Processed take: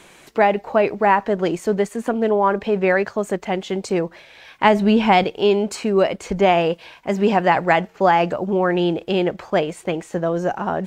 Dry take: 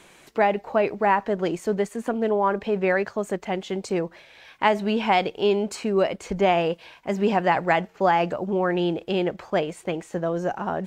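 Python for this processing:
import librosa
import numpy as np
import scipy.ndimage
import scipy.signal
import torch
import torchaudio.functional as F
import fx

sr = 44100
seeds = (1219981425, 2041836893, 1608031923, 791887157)

y = fx.low_shelf(x, sr, hz=190.0, db=11.5, at=(4.64, 5.24))
y = y * librosa.db_to_amplitude(4.5)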